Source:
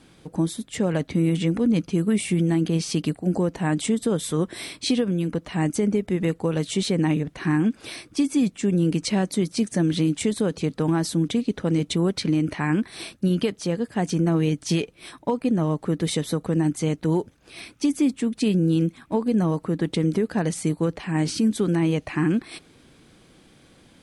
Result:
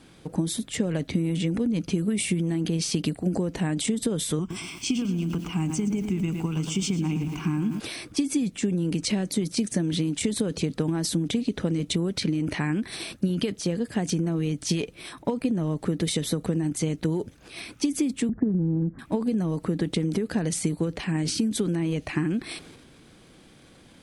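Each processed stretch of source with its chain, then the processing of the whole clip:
0:04.39–0:07.80: phaser with its sweep stopped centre 2,700 Hz, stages 8 + feedback echo at a low word length 113 ms, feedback 55%, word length 8 bits, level −11 dB
0:18.29–0:18.99: Butterworth low-pass 1,800 Hz 96 dB per octave + low-shelf EQ 190 Hz +11.5 dB
whole clip: dynamic equaliser 1,000 Hz, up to −6 dB, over −41 dBFS, Q 0.9; downward compressor, threshold −23 dBFS; transient designer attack +3 dB, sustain +7 dB

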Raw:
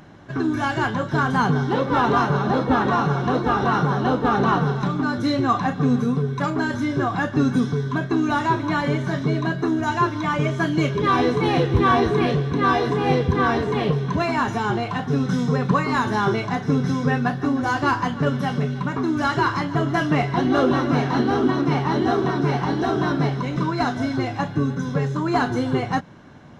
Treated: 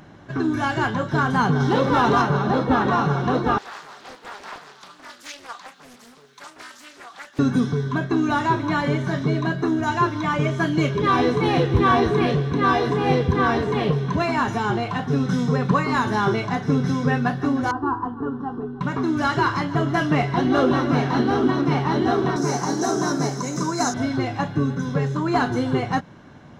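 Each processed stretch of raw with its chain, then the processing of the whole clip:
0:01.60–0:02.22: bass and treble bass 0 dB, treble +5 dB + envelope flattener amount 50%
0:03.58–0:07.39: high-pass filter 170 Hz + first difference + highs frequency-modulated by the lows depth 0.74 ms
0:17.71–0:18.81: low-pass filter 1,100 Hz + phaser with its sweep stopped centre 590 Hz, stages 6
0:22.36–0:23.94: high-pass filter 170 Hz + high shelf with overshoot 4,600 Hz +13.5 dB, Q 3
whole clip: no processing

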